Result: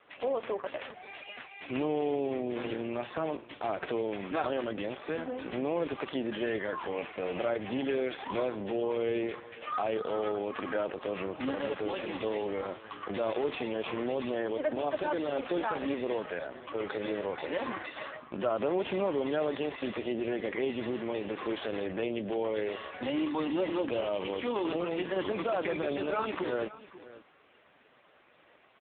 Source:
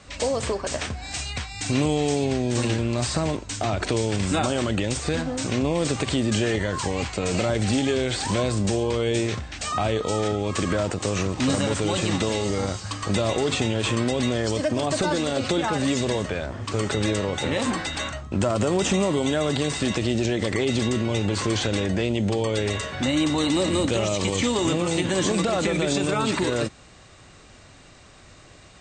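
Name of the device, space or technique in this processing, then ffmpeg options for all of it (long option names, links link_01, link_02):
satellite phone: -af "highpass=340,lowpass=3300,aecho=1:1:540:0.133,volume=-4dB" -ar 8000 -c:a libopencore_amrnb -b:a 5150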